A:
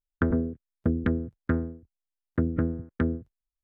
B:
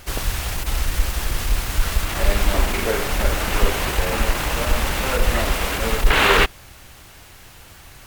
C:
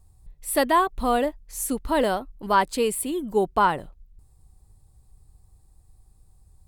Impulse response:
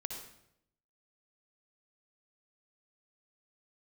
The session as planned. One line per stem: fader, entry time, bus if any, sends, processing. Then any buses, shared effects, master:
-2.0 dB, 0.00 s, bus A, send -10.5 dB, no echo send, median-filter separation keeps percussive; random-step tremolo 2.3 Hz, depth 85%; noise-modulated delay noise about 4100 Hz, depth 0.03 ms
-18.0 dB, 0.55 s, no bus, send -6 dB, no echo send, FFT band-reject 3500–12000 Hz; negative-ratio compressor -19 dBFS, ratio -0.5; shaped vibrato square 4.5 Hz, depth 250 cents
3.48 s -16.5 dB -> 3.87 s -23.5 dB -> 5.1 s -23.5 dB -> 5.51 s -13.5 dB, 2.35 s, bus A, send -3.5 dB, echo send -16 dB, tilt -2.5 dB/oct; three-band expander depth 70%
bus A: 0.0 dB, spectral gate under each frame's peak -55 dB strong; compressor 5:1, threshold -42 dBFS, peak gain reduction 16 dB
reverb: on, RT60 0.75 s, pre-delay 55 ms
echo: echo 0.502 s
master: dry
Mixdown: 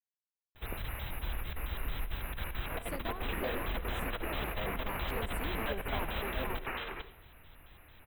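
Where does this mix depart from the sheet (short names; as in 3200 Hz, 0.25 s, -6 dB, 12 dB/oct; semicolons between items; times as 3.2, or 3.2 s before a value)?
stem A: muted; stem C: send off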